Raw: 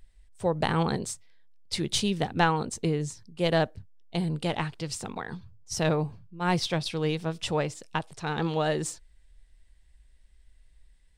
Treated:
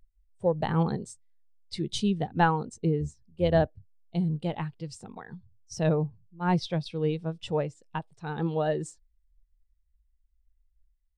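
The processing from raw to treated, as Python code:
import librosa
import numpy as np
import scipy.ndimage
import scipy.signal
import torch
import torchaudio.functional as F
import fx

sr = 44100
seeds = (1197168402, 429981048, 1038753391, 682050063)

y = fx.octave_divider(x, sr, octaves=1, level_db=-5.0, at=(3.0, 3.67))
y = fx.spectral_expand(y, sr, expansion=1.5)
y = F.gain(torch.from_numpy(y), -2.0).numpy()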